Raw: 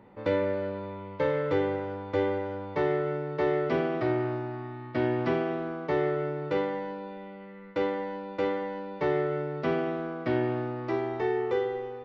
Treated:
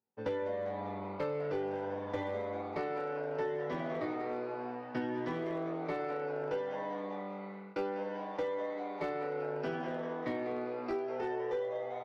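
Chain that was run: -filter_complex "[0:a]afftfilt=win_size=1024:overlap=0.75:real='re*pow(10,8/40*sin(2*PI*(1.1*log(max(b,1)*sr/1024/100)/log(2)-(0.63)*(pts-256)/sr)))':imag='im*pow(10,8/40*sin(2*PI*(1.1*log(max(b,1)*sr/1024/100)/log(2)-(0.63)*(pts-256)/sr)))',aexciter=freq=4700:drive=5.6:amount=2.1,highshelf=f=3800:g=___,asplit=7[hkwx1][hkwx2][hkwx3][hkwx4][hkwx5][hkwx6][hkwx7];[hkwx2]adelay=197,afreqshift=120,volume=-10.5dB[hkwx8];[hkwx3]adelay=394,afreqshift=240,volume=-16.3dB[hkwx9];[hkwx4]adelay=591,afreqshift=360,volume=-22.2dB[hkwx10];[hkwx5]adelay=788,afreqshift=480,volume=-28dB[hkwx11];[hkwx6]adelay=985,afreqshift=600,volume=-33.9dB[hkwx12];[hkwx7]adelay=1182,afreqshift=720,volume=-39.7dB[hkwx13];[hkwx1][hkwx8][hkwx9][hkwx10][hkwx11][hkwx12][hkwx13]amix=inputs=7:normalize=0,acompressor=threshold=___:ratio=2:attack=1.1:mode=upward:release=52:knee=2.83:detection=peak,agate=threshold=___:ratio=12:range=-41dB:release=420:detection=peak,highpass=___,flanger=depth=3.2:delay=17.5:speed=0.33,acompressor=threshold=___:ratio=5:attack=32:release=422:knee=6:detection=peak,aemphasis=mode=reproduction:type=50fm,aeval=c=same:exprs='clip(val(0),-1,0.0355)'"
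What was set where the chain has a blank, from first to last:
3.5, -40dB, -42dB, 120, -34dB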